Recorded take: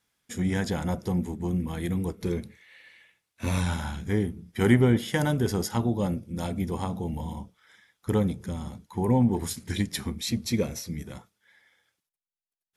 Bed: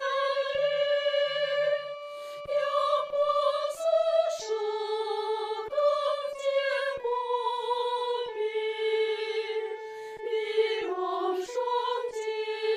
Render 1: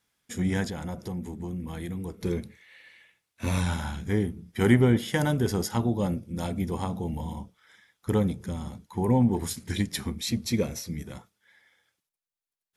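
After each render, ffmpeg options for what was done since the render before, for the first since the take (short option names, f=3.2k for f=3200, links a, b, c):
-filter_complex "[0:a]asettb=1/sr,asplit=3[a][b][c];[a]atrim=end=0.664[d];[b]atrim=start=0.66:end=2.25,asetpts=PTS-STARTPTS,afade=t=in:d=0.004:c=qsin,afade=t=out:st=1.586:d=0.004:c=qsin,acompressor=threshold=-33dB:ratio=2.5:attack=3.2:release=140:knee=1:detection=peak[e];[c]atrim=start=2.246[f];[d][e]acrossfade=d=0.004:c1=hsin:c2=qsin[g];[g][f]acrossfade=d=0.004:c1=qsin:c2=hsin"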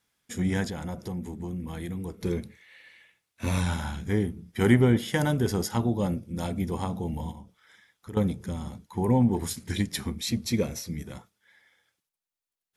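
-filter_complex "[0:a]asettb=1/sr,asplit=3[a][b][c];[a]atrim=end=7.314[d];[b]atrim=start=7.31:end=8.17,asetpts=PTS-STARTPTS,afade=t=in:d=0.004:c=qsin,afade=t=out:st=0.856:d=0.004:c=qsin,acompressor=threshold=-46dB:ratio=2:attack=3.2:release=140:knee=1:detection=peak[e];[c]atrim=start=8.166[f];[d][e]acrossfade=d=0.004:c1=hsin:c2=qsin[g];[g][f]acrossfade=d=0.004:c1=qsin:c2=hsin"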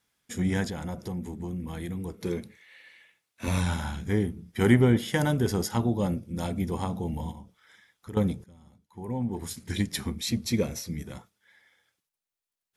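-filter_complex "[0:a]asettb=1/sr,asplit=3[a][b][c];[a]atrim=end=2.174[d];[b]atrim=start=2.17:end=3.48,asetpts=PTS-STARTPTS,afade=t=in:d=0.004:c=qsin,afade=t=out:st=1.306:d=0.004:c=qsin,highpass=f=170:p=1[e];[c]atrim=start=3.476[f];[d][e]acrossfade=d=0.004:c1=hsin:c2=qsin[g];[g][f]acrossfade=d=0.004:c1=qsin:c2=hsin,asplit=2[h][i];[h]atrim=end=8.44,asetpts=PTS-STARTPTS,afade=t=out:st=8.436:d=0.004:c=hsin:silence=0.0891251[j];[i]atrim=start=8.44,asetpts=PTS-STARTPTS,afade=t=in:d=1.39:c=qua:silence=0.0891251[k];[j][k]concat=n=2:v=0:a=1"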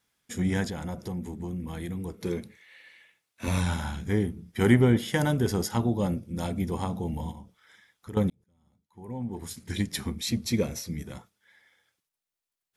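-filter_complex "[0:a]asplit=2[a][b];[a]atrim=end=8.3,asetpts=PTS-STARTPTS,afade=t=out:st=8.296:d=0.004:c=hsin[c];[b]atrim=start=8.3,asetpts=PTS-STARTPTS,afade=t=in:d=2.12:c=qsin[d];[c][d]concat=n=2:v=0:a=1"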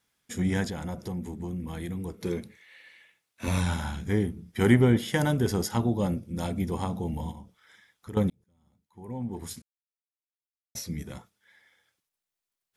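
-filter_complex "[0:a]asplit=3[a][b][c];[a]atrim=end=9.62,asetpts=PTS-STARTPTS,afade=t=out:st=9.616:d=0.004:c=hsin[d];[b]atrim=start=9.62:end=10.75,asetpts=PTS-STARTPTS,volume=0[e];[c]atrim=start=10.75,asetpts=PTS-STARTPTS,afade=t=in:d=0.004:c=hsin[f];[d][e][f]concat=n=3:v=0:a=1"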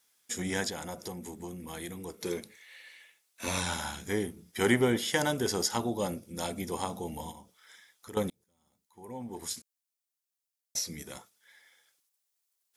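-filter_complex "[0:a]bass=f=250:g=-13,treble=f=4k:g=9,acrossover=split=7900[a][b];[b]acompressor=threshold=-43dB:ratio=4:attack=1:release=60[c];[a][c]amix=inputs=2:normalize=0"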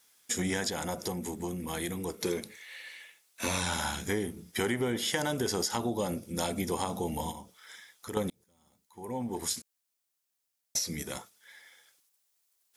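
-filter_complex "[0:a]asplit=2[a][b];[b]alimiter=limit=-21.5dB:level=0:latency=1,volume=-0.5dB[c];[a][c]amix=inputs=2:normalize=0,acompressor=threshold=-27dB:ratio=6"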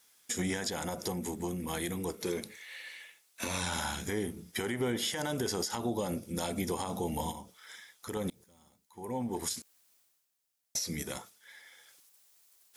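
-af "areverse,acompressor=mode=upward:threshold=-53dB:ratio=2.5,areverse,alimiter=limit=-22.5dB:level=0:latency=1:release=101"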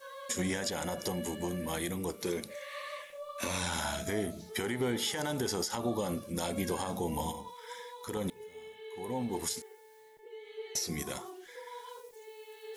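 -filter_complex "[1:a]volume=-18dB[a];[0:a][a]amix=inputs=2:normalize=0"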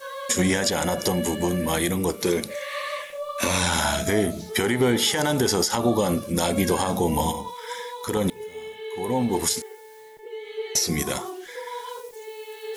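-af "volume=11.5dB"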